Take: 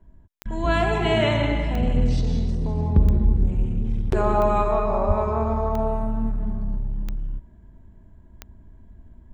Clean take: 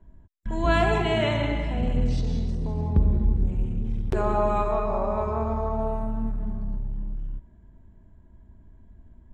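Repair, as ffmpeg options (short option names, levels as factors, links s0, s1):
-filter_complex "[0:a]adeclick=t=4,asplit=3[s0][s1][s2];[s0]afade=t=out:st=5.07:d=0.02[s3];[s1]highpass=f=140:w=0.5412,highpass=f=140:w=1.3066,afade=t=in:st=5.07:d=0.02,afade=t=out:st=5.19:d=0.02[s4];[s2]afade=t=in:st=5.19:d=0.02[s5];[s3][s4][s5]amix=inputs=3:normalize=0,asetnsamples=n=441:p=0,asendcmd='1.02 volume volume -3.5dB',volume=1"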